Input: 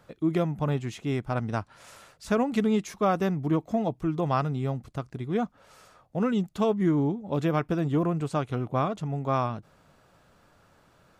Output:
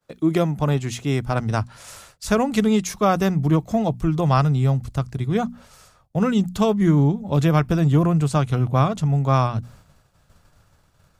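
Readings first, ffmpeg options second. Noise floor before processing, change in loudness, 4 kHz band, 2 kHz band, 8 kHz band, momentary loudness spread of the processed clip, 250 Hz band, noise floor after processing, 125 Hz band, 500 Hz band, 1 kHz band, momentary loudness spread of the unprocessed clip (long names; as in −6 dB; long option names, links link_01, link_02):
−62 dBFS, +7.5 dB, +9.5 dB, +6.5 dB, can't be measured, 8 LU, +6.5 dB, −60 dBFS, +10.5 dB, +5.0 dB, +6.0 dB, 8 LU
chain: -filter_complex "[0:a]asubboost=boost=4:cutoff=140,bandreject=frequency=60:width_type=h:width=6,bandreject=frequency=120:width_type=h:width=6,bandreject=frequency=180:width_type=h:width=6,bandreject=frequency=240:width_type=h:width=6,agate=range=-33dB:threshold=-48dB:ratio=3:detection=peak,acrossover=split=150|4300[link_01][link_02][link_03];[link_03]acontrast=81[link_04];[link_01][link_02][link_04]amix=inputs=3:normalize=0,volume=6.5dB"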